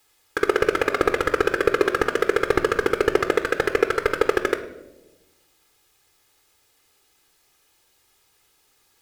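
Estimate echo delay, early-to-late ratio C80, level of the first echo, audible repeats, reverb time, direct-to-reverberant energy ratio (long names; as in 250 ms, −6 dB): no echo audible, 14.0 dB, no echo audible, no echo audible, 1.1 s, 9.0 dB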